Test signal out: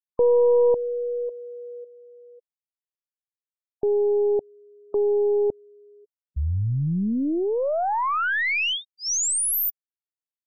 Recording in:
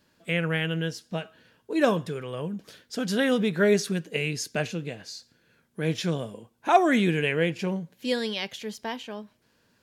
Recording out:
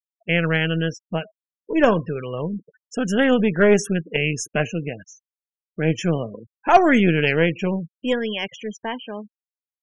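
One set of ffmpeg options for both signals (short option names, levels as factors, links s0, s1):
-af "asuperstop=centerf=4200:order=8:qfactor=1.9,aeval=exprs='0.447*(cos(1*acos(clip(val(0)/0.447,-1,1)))-cos(1*PI/2))+0.00631*(cos(2*acos(clip(val(0)/0.447,-1,1)))-cos(2*PI/2))+0.0251*(cos(6*acos(clip(val(0)/0.447,-1,1)))-cos(6*PI/2))':c=same,afftfilt=real='re*gte(hypot(re,im),0.0141)':imag='im*gte(hypot(re,im),0.0141)':win_size=1024:overlap=0.75,volume=1.88"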